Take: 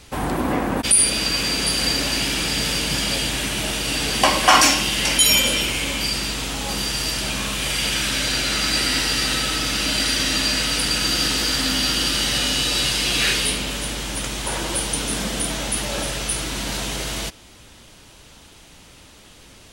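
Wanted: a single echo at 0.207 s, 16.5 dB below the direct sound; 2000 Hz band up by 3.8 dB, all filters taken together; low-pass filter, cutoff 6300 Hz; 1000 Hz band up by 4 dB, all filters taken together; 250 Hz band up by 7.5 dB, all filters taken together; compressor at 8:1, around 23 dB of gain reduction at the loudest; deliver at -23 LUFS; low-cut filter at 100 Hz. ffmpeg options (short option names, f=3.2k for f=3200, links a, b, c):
-af "highpass=100,lowpass=6.3k,equalizer=f=250:t=o:g=9,equalizer=f=1k:t=o:g=3.5,equalizer=f=2k:t=o:g=4,acompressor=threshold=-30dB:ratio=8,aecho=1:1:207:0.15,volume=8dB"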